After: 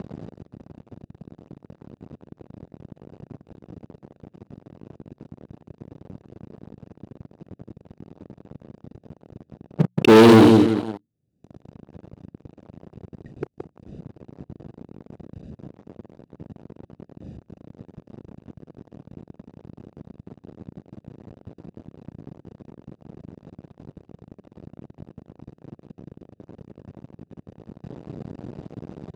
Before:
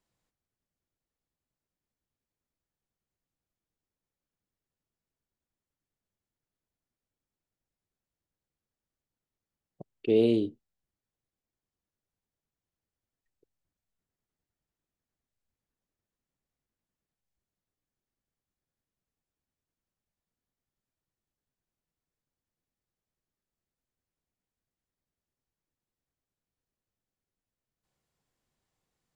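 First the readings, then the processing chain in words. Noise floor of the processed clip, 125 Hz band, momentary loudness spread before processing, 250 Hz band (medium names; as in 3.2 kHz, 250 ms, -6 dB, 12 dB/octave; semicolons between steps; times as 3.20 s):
-68 dBFS, +20.5 dB, 14 LU, +16.0 dB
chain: local Wiener filter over 41 samples; peaking EQ 1.4 kHz -9 dB 0.77 oct; on a send: feedback delay 172 ms, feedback 24%, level -8.5 dB; on the sum: level-controlled noise filter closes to 2.9 kHz, open at -65 dBFS; hum notches 60/120/180 Hz; upward compressor, threshold -36 dBFS; Butterworth band-stop 970 Hz, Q 2.3; tone controls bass +12 dB, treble +10 dB; doubling 36 ms -13 dB; waveshaping leveller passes 5; high-pass 130 Hz 12 dB/octave; trim +2.5 dB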